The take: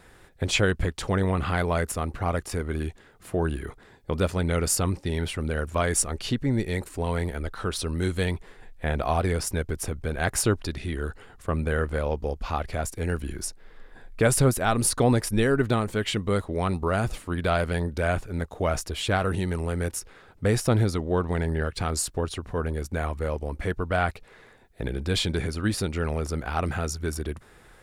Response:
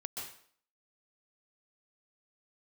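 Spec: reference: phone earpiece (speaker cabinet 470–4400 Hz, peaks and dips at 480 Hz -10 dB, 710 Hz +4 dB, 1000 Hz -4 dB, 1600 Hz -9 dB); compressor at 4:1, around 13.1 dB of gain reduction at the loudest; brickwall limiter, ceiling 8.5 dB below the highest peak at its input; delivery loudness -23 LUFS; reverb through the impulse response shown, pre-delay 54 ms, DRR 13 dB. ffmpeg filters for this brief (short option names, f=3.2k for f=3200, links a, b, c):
-filter_complex "[0:a]acompressor=threshold=-32dB:ratio=4,alimiter=level_in=4dB:limit=-24dB:level=0:latency=1,volume=-4dB,asplit=2[a][b];[1:a]atrim=start_sample=2205,adelay=54[c];[b][c]afir=irnorm=-1:irlink=0,volume=-12.5dB[d];[a][d]amix=inputs=2:normalize=0,highpass=470,equalizer=f=480:t=q:w=4:g=-10,equalizer=f=710:t=q:w=4:g=4,equalizer=f=1k:t=q:w=4:g=-4,equalizer=f=1.6k:t=q:w=4:g=-9,lowpass=f=4.4k:w=0.5412,lowpass=f=4.4k:w=1.3066,volume=23dB"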